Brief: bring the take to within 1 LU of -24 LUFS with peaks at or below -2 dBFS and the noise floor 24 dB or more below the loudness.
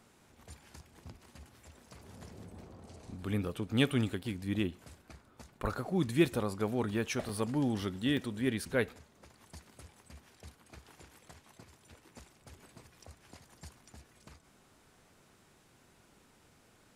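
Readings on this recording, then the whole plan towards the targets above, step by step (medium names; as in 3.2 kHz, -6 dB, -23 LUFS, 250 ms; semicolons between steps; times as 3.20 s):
dropouts 3; longest dropout 2.5 ms; loudness -33.5 LUFS; peak level -15.5 dBFS; loudness target -24.0 LUFS
-> interpolate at 6.26/7.29/8.17 s, 2.5 ms; trim +9.5 dB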